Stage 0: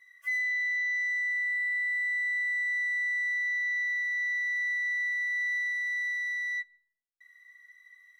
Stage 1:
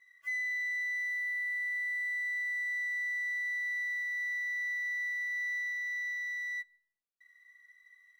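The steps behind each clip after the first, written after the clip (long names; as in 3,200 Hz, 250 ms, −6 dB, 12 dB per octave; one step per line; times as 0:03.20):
running median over 5 samples
level −4.5 dB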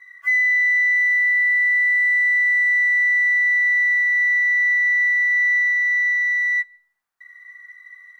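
flat-topped bell 1,200 Hz +11.5 dB
level +8 dB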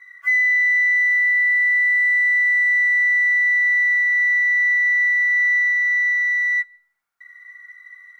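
hollow resonant body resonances 1,400/2,200 Hz, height 11 dB, ringing for 40 ms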